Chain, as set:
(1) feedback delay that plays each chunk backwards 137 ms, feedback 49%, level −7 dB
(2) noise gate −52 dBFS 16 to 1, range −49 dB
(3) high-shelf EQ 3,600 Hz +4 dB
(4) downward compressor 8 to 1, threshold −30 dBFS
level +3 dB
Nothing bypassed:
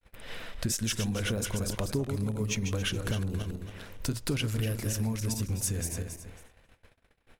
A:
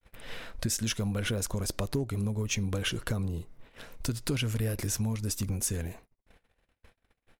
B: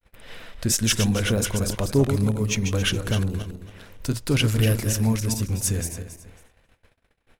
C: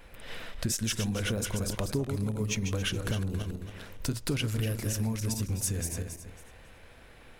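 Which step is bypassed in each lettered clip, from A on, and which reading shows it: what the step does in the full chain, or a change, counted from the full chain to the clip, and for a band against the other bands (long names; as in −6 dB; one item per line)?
1, change in crest factor +1.5 dB
4, average gain reduction 5.5 dB
2, change in momentary loudness spread +1 LU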